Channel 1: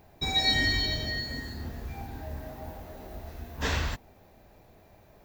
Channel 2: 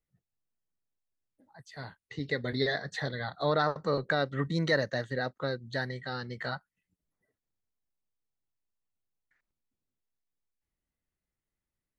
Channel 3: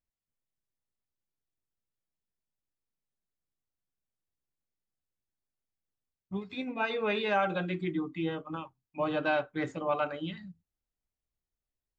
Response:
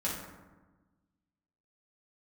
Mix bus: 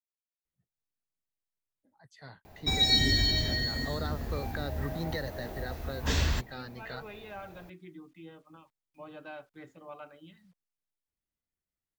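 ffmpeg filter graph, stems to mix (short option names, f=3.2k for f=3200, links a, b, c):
-filter_complex "[0:a]adelay=2450,volume=3dB[a];[1:a]adelay=450,volume=-6.5dB[b];[2:a]acrusher=bits=9:mix=0:aa=0.000001,volume=-16dB[c];[a][b][c]amix=inputs=3:normalize=0,acrossover=split=380|3000[d][e][f];[e]acompressor=threshold=-36dB:ratio=6[g];[d][g][f]amix=inputs=3:normalize=0"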